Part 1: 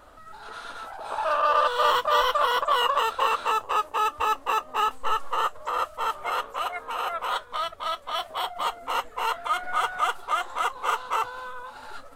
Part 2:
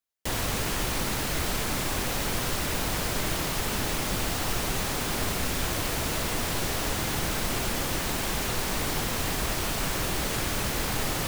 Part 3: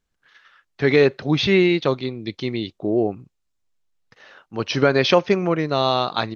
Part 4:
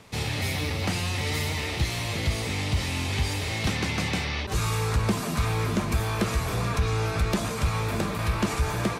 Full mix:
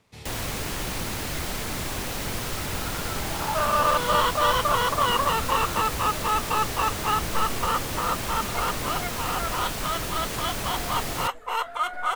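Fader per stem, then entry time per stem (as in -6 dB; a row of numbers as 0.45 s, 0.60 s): -0.5 dB, -2.0 dB, mute, -14.0 dB; 2.30 s, 0.00 s, mute, 0.00 s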